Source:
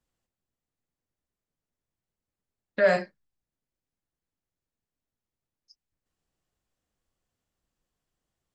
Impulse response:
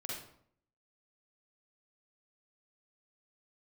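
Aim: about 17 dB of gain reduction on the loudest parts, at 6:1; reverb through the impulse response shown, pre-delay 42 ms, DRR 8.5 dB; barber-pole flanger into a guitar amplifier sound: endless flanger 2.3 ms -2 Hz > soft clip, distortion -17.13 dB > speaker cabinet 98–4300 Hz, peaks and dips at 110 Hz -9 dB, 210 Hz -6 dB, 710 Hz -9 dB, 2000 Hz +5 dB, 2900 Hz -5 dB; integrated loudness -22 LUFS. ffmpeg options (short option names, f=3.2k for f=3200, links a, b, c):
-filter_complex "[0:a]acompressor=threshold=-35dB:ratio=6,asplit=2[a][b];[1:a]atrim=start_sample=2205,adelay=42[c];[b][c]afir=irnorm=-1:irlink=0,volume=-8.5dB[d];[a][d]amix=inputs=2:normalize=0,asplit=2[e][f];[f]adelay=2.3,afreqshift=-2[g];[e][g]amix=inputs=2:normalize=1,asoftclip=threshold=-32dB,highpass=98,equalizer=f=110:t=q:w=4:g=-9,equalizer=f=210:t=q:w=4:g=-6,equalizer=f=710:t=q:w=4:g=-9,equalizer=f=2k:t=q:w=4:g=5,equalizer=f=2.9k:t=q:w=4:g=-5,lowpass=f=4.3k:w=0.5412,lowpass=f=4.3k:w=1.3066,volume=25dB"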